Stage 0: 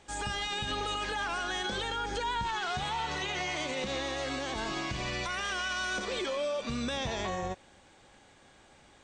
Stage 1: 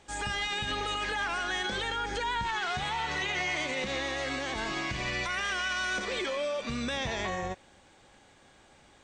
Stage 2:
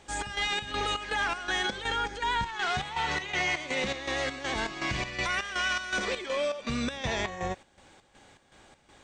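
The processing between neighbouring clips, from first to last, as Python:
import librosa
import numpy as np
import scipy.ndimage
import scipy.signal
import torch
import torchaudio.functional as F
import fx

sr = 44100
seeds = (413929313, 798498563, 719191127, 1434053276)

y1 = fx.dynamic_eq(x, sr, hz=2000.0, q=2.1, threshold_db=-50.0, ratio=4.0, max_db=6)
y2 = fx.chopper(y1, sr, hz=2.7, depth_pct=65, duty_pct=60)
y2 = y2 * 10.0 ** (3.0 / 20.0)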